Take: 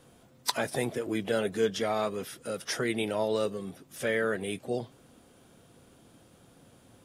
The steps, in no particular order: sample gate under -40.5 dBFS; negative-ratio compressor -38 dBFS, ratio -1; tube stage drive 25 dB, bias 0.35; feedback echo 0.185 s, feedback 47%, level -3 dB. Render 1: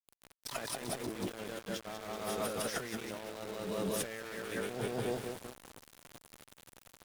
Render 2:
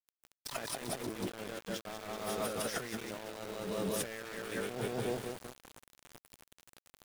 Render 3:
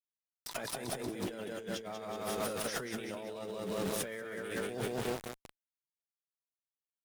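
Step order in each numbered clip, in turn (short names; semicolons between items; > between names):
feedback echo > negative-ratio compressor > sample gate > tube stage; feedback echo > negative-ratio compressor > tube stage > sample gate; feedback echo > sample gate > negative-ratio compressor > tube stage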